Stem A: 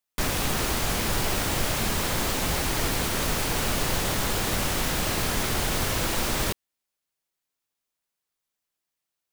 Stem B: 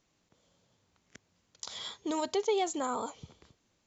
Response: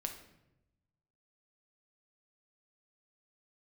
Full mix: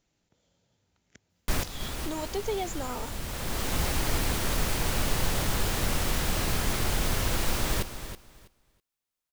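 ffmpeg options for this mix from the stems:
-filter_complex "[0:a]adelay=1300,volume=-4dB,asplit=2[a][b];[b]volume=-11dB[c];[1:a]bandreject=f=1.1k:w=6.8,volume=-2.5dB,asplit=2[d][e];[e]apad=whole_len=468411[f];[a][f]sidechaincompress=threshold=-47dB:ratio=8:attack=5.3:release=668[g];[c]aecho=0:1:325|650|975:1|0.18|0.0324[h];[g][d][h]amix=inputs=3:normalize=0,lowshelf=f=90:g=7.5"

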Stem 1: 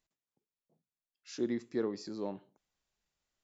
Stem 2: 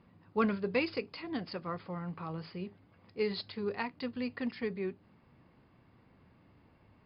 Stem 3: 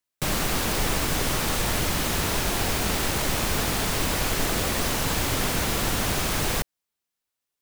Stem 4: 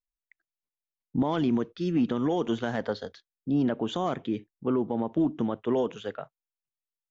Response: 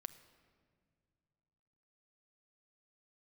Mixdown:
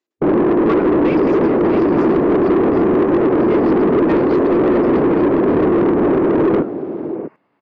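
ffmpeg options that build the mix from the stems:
-filter_complex "[0:a]volume=-12.5dB[a];[1:a]highshelf=f=2.5k:g=-8.5,adelay=300,volume=2.5dB,asplit=2[b][c];[c]volume=-12dB[d];[2:a]aeval=exprs='0.282*sin(PI/2*2.82*val(0)/0.282)':c=same,afwtdn=0.0708,lowpass=f=350:t=q:w=3.5,volume=1.5dB,asplit=2[e][f];[f]volume=-17dB[g];[3:a]adelay=450,volume=-17.5dB[h];[b][e][h]amix=inputs=3:normalize=0,asuperstop=centerf=3700:order=4:qfactor=1.4,alimiter=limit=-7.5dB:level=0:latency=1:release=89,volume=0dB[i];[d][g]amix=inputs=2:normalize=0,aecho=0:1:653:1[j];[a][i][j]amix=inputs=3:normalize=0,highpass=180,asplit=2[k][l];[l]highpass=f=720:p=1,volume=23dB,asoftclip=type=tanh:threshold=-6.5dB[m];[k][m]amix=inputs=2:normalize=0,lowpass=f=2.6k:p=1,volume=-6dB"

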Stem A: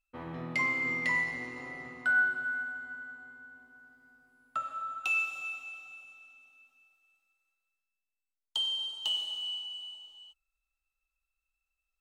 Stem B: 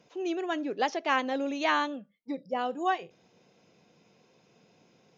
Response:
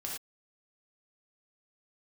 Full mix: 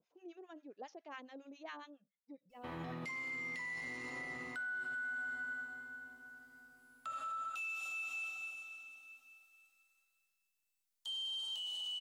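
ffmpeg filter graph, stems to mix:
-filter_complex "[0:a]highshelf=f=2.9k:g=10,acompressor=threshold=-32dB:ratio=6,adelay=2500,volume=-0.5dB[a];[1:a]acrossover=split=940[b][c];[b]aeval=exprs='val(0)*(1-1/2+1/2*cos(2*PI*7.3*n/s))':c=same[d];[c]aeval=exprs='val(0)*(1-1/2-1/2*cos(2*PI*7.3*n/s))':c=same[e];[d][e]amix=inputs=2:normalize=0,volume=-17.5dB[f];[a][f]amix=inputs=2:normalize=0,alimiter=level_in=12.5dB:limit=-24dB:level=0:latency=1:release=39,volume=-12.5dB"

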